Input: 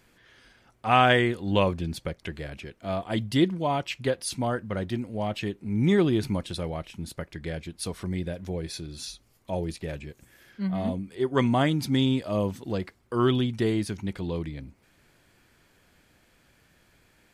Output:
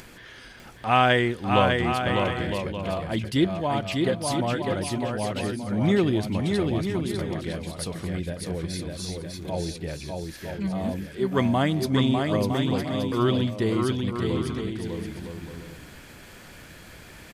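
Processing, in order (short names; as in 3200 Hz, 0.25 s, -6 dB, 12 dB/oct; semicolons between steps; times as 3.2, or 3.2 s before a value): upward compressor, threshold -34 dBFS; bouncing-ball echo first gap 0.6 s, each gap 0.6×, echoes 5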